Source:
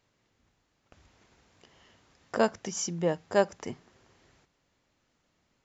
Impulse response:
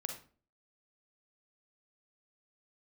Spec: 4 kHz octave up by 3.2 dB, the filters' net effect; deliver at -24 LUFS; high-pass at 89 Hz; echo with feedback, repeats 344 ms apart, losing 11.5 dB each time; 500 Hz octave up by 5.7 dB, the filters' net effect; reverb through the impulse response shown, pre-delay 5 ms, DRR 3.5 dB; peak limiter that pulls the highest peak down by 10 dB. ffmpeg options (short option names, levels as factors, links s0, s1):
-filter_complex "[0:a]highpass=89,equalizer=f=500:t=o:g=7,equalizer=f=4000:t=o:g=5,alimiter=limit=0.133:level=0:latency=1,aecho=1:1:344|688|1032:0.266|0.0718|0.0194,asplit=2[s0][s1];[1:a]atrim=start_sample=2205,adelay=5[s2];[s1][s2]afir=irnorm=-1:irlink=0,volume=0.708[s3];[s0][s3]amix=inputs=2:normalize=0,volume=1.78"